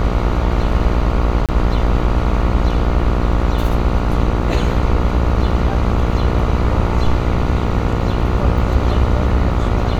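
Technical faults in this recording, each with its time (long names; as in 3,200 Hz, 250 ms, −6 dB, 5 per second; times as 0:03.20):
mains buzz 60 Hz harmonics 24 −20 dBFS
0:01.46–0:01.49: drop-out 27 ms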